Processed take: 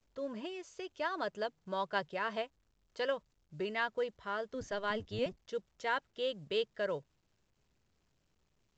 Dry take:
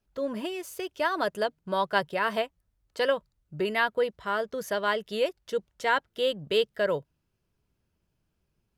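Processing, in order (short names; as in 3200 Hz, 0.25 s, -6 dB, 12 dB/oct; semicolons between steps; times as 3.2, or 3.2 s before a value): 4.54–5.4 octaver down 1 oct, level +3 dB; gain -9 dB; µ-law 128 kbps 16000 Hz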